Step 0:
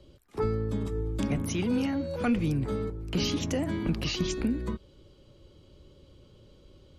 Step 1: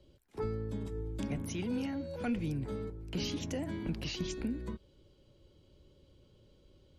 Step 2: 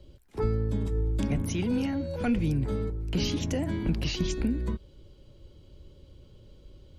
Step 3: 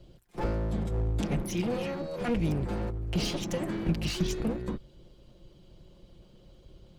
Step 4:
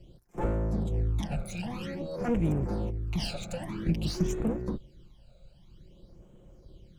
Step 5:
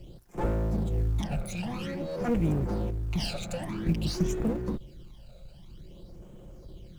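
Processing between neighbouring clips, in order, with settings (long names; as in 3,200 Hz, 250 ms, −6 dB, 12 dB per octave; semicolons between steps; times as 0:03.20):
notch filter 1,200 Hz, Q 7.4; level −7.5 dB
low-shelf EQ 87 Hz +10 dB; level +6 dB
lower of the sound and its delayed copy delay 5.7 ms
all-pass phaser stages 12, 0.51 Hz, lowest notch 310–4,600 Hz
mu-law and A-law mismatch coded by mu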